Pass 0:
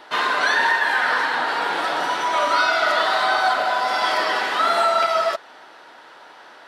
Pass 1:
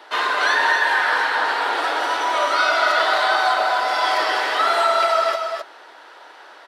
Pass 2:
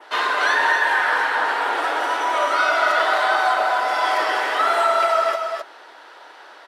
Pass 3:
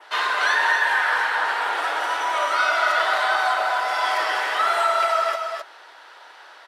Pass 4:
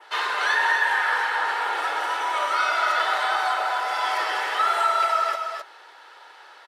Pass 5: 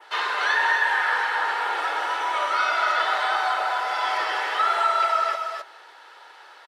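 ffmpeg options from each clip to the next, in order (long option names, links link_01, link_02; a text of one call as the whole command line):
ffmpeg -i in.wav -filter_complex "[0:a]highpass=frequency=300:width=0.5412,highpass=frequency=300:width=1.3066,asplit=2[link_01][link_02];[link_02]aecho=0:1:261:0.531[link_03];[link_01][link_03]amix=inputs=2:normalize=0" out.wav
ffmpeg -i in.wav -af "bandreject=frequency=50:width_type=h:width=6,bandreject=frequency=100:width_type=h:width=6,bandreject=frequency=150:width_type=h:width=6,adynamicequalizer=threshold=0.00891:dfrequency=4300:dqfactor=1.8:tfrequency=4300:tqfactor=1.8:attack=5:release=100:ratio=0.375:range=3.5:mode=cutabove:tftype=bell" out.wav
ffmpeg -i in.wav -af "highpass=frequency=850:poles=1" out.wav
ffmpeg -i in.wav -af "aecho=1:1:2.3:0.34,volume=-2.5dB" out.wav
ffmpeg -i in.wav -filter_complex "[0:a]acrossover=split=6500[link_01][link_02];[link_02]acompressor=threshold=-54dB:ratio=4:attack=1:release=60[link_03];[link_01][link_03]amix=inputs=2:normalize=0,asplit=2[link_04][link_05];[link_05]adelay=210,highpass=300,lowpass=3400,asoftclip=type=hard:threshold=-19dB,volume=-25dB[link_06];[link_04][link_06]amix=inputs=2:normalize=0" out.wav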